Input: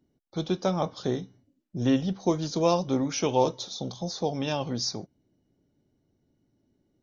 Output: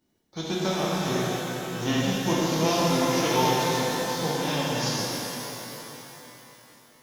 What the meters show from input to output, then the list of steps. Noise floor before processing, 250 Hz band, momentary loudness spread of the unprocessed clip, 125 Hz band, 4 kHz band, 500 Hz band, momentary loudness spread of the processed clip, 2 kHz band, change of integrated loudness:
-74 dBFS, +1.5 dB, 10 LU, +3.0 dB, +6.5 dB, +1.0 dB, 15 LU, +12.0 dB, +2.5 dB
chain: formants flattened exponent 0.6; pitch-shifted reverb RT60 3.5 s, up +12 st, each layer -8 dB, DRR -6.5 dB; trim -5 dB

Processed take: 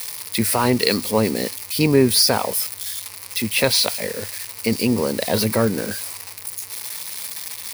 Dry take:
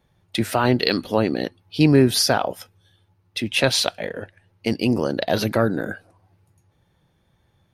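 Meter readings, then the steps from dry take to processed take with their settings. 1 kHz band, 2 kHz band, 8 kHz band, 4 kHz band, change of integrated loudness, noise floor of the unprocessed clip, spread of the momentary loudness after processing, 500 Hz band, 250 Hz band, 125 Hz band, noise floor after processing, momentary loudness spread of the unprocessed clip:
0.0 dB, +0.5 dB, +7.5 dB, +3.0 dB, +0.5 dB, -65 dBFS, 13 LU, +1.0 dB, 0.0 dB, -1.0 dB, -38 dBFS, 15 LU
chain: zero-crossing glitches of -18 dBFS; rippled EQ curve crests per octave 0.89, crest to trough 7 dB

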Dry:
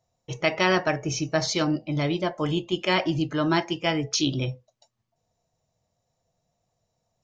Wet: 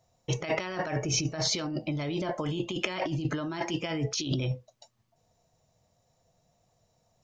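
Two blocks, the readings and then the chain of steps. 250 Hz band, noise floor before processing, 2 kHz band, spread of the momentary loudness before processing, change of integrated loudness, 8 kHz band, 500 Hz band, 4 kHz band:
-6.5 dB, -78 dBFS, -8.0 dB, 6 LU, -6.0 dB, no reading, -7.0 dB, -5.0 dB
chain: compressor with a negative ratio -31 dBFS, ratio -1

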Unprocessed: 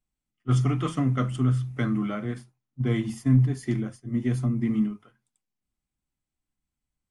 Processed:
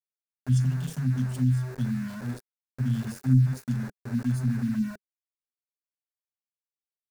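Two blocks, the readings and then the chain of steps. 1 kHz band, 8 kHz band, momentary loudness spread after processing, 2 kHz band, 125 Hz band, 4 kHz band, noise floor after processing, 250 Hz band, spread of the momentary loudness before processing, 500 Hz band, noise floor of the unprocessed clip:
-10.5 dB, +0.5 dB, 11 LU, -4.0 dB, -0.5 dB, no reading, under -85 dBFS, -2.5 dB, 10 LU, -13.0 dB, under -85 dBFS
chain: FFT band-reject 260–2600 Hz; small samples zeroed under -37.5 dBFS; graphic EQ with 31 bands 200 Hz -5 dB, 400 Hz +7 dB, 1.6 kHz +10 dB, 3.15 kHz -11 dB

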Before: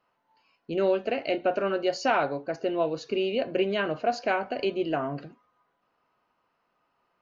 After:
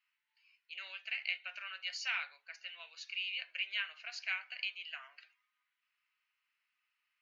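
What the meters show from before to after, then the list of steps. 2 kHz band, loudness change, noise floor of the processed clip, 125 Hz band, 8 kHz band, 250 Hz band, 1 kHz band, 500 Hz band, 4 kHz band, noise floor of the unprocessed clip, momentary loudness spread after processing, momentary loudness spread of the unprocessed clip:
-4.0 dB, -11.5 dB, under -85 dBFS, under -40 dB, no reading, under -40 dB, -23.5 dB, under -40 dB, -2.0 dB, -75 dBFS, 11 LU, 5 LU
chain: ladder high-pass 1.9 kHz, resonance 50%; trim +3 dB

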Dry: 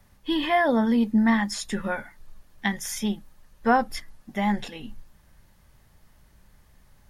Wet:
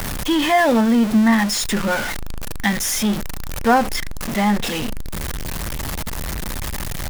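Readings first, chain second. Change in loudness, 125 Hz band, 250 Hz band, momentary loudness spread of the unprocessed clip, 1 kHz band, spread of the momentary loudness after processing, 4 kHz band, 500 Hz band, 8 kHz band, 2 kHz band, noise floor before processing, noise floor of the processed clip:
+5.0 dB, +10.0 dB, +6.5 dB, 15 LU, +6.0 dB, 13 LU, +10.0 dB, +6.5 dB, +12.5 dB, +7.0 dB, -59 dBFS, -25 dBFS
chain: jump at every zero crossing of -23 dBFS; trim +3.5 dB

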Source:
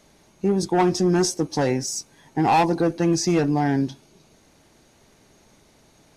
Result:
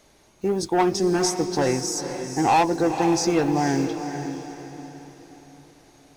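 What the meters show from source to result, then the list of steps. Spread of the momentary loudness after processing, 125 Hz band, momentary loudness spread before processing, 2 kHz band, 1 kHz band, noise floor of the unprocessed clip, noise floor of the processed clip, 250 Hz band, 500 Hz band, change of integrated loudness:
16 LU, -4.5 dB, 9 LU, +0.5 dB, +0.5 dB, -57 dBFS, -57 dBFS, -1.0 dB, 0.0 dB, -1.0 dB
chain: block-companded coder 7-bit; peaking EQ 180 Hz -7 dB 0.75 oct; echo that smears into a reverb 486 ms, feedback 43%, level -8 dB

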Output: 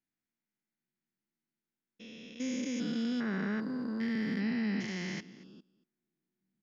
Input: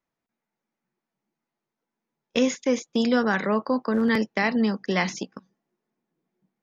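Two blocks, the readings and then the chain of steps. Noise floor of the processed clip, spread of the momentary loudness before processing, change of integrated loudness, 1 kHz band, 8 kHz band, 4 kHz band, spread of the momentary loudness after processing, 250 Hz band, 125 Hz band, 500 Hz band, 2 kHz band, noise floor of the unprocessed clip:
under -85 dBFS, 6 LU, -10.5 dB, -19.5 dB, no reading, -11.0 dB, 16 LU, -8.5 dB, -6.0 dB, -18.0 dB, -12.5 dB, under -85 dBFS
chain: spectrogram pixelated in time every 400 ms; high-order bell 730 Hz -10 dB; delay 232 ms -20 dB; trim -5.5 dB

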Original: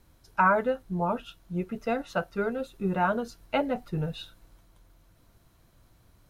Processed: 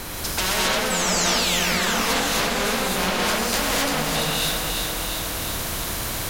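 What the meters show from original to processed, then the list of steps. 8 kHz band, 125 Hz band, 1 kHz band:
no reading, +4.0 dB, +4.0 dB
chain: compression 4:1, threshold -42 dBFS, peak gain reduction 20 dB; sine folder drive 14 dB, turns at -26.5 dBFS; painted sound fall, 0.90–2.01 s, 750–8200 Hz -35 dBFS; two-band feedback delay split 470 Hz, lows 185 ms, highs 347 ms, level -8 dB; gated-style reverb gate 290 ms rising, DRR -7 dB; spectrum-flattening compressor 2:1

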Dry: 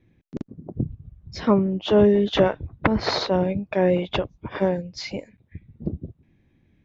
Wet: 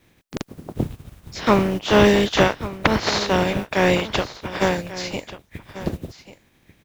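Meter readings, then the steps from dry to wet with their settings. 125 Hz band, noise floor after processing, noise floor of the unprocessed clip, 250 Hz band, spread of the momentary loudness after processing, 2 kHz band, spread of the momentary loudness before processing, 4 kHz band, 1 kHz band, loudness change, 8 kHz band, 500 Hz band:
+1.5 dB, -60 dBFS, -64 dBFS, +1.0 dB, 20 LU, +9.0 dB, 19 LU, +5.5 dB, +6.0 dB, +2.5 dB, no reading, +1.0 dB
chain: spectral contrast reduction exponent 0.51; delay 1141 ms -15.5 dB; trim +2 dB

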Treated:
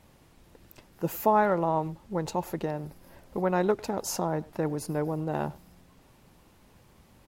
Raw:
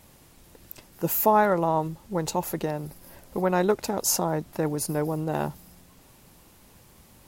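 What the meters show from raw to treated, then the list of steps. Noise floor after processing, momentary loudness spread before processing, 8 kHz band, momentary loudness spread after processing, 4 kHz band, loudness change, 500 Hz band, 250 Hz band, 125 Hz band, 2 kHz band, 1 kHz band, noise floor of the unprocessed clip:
-59 dBFS, 15 LU, -10.0 dB, 11 LU, -7.0 dB, -3.5 dB, -2.5 dB, -2.5 dB, -2.5 dB, -3.5 dB, -3.0 dB, -55 dBFS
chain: treble shelf 5.4 kHz -11 dB; speakerphone echo 100 ms, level -21 dB; trim -2.5 dB

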